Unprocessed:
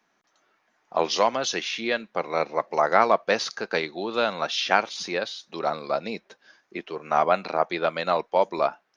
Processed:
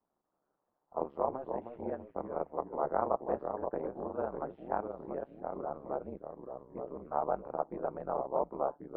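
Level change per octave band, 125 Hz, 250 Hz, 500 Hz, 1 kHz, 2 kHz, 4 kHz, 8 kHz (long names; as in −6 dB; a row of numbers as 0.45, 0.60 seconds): −7.5 dB, −8.0 dB, −10.0 dB, −11.5 dB, −26.5 dB, below −40 dB, can't be measured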